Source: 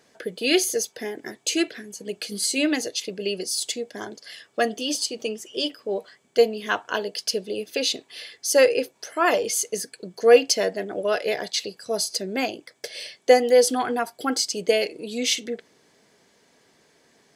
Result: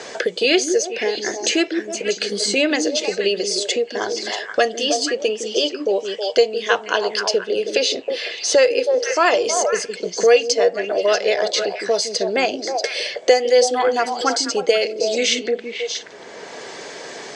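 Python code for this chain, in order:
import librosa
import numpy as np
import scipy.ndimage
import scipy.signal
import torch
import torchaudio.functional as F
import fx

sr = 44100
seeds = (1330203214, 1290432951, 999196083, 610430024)

y = scipy.signal.sosfilt(scipy.signal.butter(6, 7800.0, 'lowpass', fs=sr, output='sos'), x)
y = fx.low_shelf_res(y, sr, hz=330.0, db=-7.0, q=1.5)
y = fx.echo_stepped(y, sr, ms=159, hz=260.0, octaves=1.4, feedback_pct=70, wet_db=-3.5)
y = fx.band_squash(y, sr, depth_pct=70)
y = y * 10.0 ** (5.0 / 20.0)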